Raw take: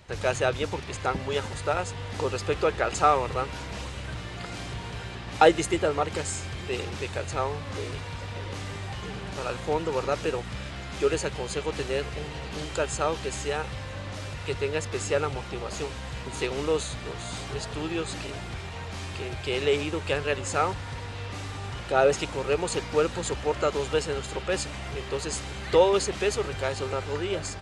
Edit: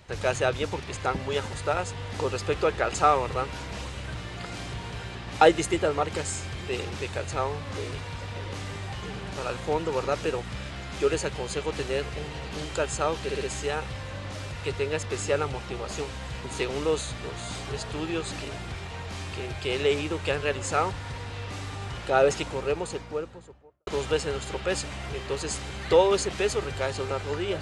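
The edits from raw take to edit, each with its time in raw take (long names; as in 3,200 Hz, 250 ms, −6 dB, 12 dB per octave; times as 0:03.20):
0:13.23: stutter 0.06 s, 4 plays
0:22.11–0:23.69: fade out and dull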